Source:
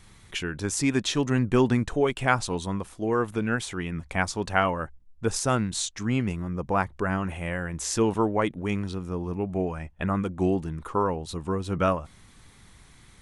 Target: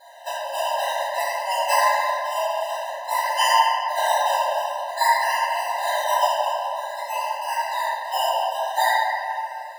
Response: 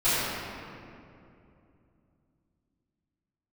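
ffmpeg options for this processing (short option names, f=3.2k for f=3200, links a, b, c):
-filter_complex "[0:a]acrossover=split=1400[a][b];[a]asuperpass=centerf=790:order=4:qfactor=1.8[c];[b]acompressor=mode=upward:threshold=-45dB:ratio=2.5[d];[c][d]amix=inputs=2:normalize=0,acrusher=samples=22:mix=1:aa=0.000001:lfo=1:lforange=13.2:lforate=0.38,asetrate=59535,aresample=44100[e];[1:a]atrim=start_sample=2205[f];[e][f]afir=irnorm=-1:irlink=0,afftfilt=real='re*eq(mod(floor(b*sr/1024/520),2),1)':imag='im*eq(mod(floor(b*sr/1024/520),2),1)':win_size=1024:overlap=0.75,volume=-1.5dB"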